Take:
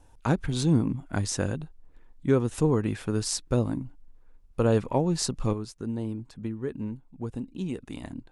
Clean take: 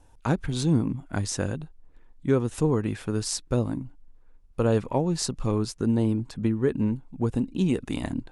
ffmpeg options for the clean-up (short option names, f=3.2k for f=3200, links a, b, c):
-af "asetnsamples=n=441:p=0,asendcmd='5.53 volume volume 8.5dB',volume=0dB"